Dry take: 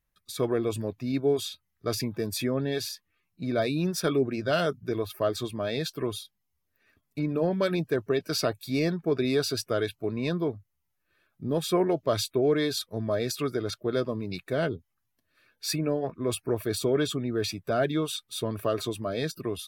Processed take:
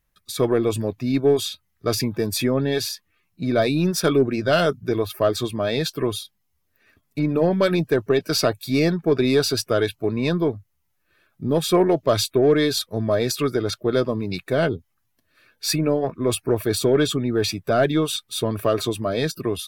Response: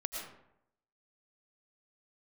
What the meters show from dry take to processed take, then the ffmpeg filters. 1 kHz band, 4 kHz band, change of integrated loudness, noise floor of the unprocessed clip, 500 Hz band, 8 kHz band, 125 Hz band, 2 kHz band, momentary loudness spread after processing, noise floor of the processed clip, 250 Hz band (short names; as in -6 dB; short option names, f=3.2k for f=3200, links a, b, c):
+7.0 dB, +7.0 dB, +7.0 dB, -78 dBFS, +7.0 dB, +7.0 dB, +7.0 dB, +7.0 dB, 7 LU, -71 dBFS, +7.0 dB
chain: -af "acontrast=89,aeval=exprs='0.398*(cos(1*acos(clip(val(0)/0.398,-1,1)))-cos(1*PI/2))+0.01*(cos(6*acos(clip(val(0)/0.398,-1,1)))-cos(6*PI/2))+0.00355*(cos(8*acos(clip(val(0)/0.398,-1,1)))-cos(8*PI/2))':c=same"